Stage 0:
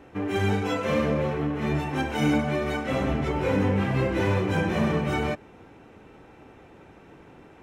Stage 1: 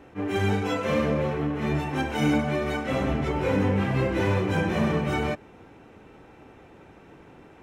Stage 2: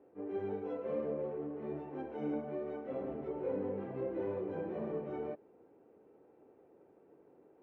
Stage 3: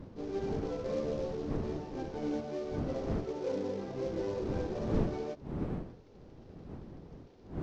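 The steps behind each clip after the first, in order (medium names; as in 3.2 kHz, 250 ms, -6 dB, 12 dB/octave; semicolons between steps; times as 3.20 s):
attacks held to a fixed rise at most 360 dB/s
band-pass filter 440 Hz, Q 1.9; distance through air 84 m; trim -8 dB
CVSD coder 32 kbps; wind noise 270 Hz -42 dBFS; endings held to a fixed fall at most 410 dB/s; trim +2 dB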